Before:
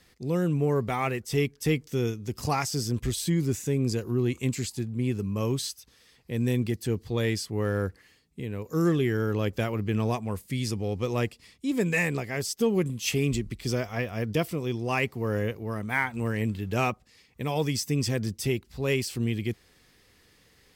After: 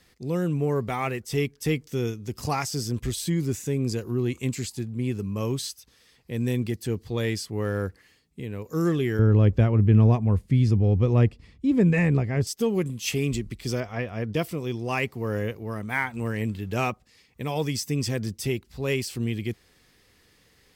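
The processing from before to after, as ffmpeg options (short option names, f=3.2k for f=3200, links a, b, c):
-filter_complex "[0:a]asettb=1/sr,asplit=3[a][b][c];[a]atrim=end=9.194[d];[b]atrim=start=9.19:end=12.47,asetpts=PTS-STARTPTS,afade=t=in:d=0.004:c=qsin,afade=t=out:st=3.276:d=0.004:c=qsin,aemphasis=mode=reproduction:type=riaa[e];[c]atrim=start=12.466[f];[d][e]acrossfade=d=0.004:c1=hsin:c2=qsin[g];[g][f]acrossfade=d=0.004:c1=qsin:c2=hsin,asettb=1/sr,asplit=3[h][i][j];[h]atrim=end=13.804[k];[i]atrim=start=13.8:end=14.36,asetpts=PTS-STARTPTS,afade=t=in:d=0.004:c=qsin,afade=t=out:st=0.556:d=0.004:c=qsin,aemphasis=mode=reproduction:type=50fm[l];[j]atrim=start=14.356[m];[k][l]acrossfade=d=0.004:c1=hsin:c2=qsin[n];[n][m]acrossfade=d=0.004:c1=qsin:c2=hsin"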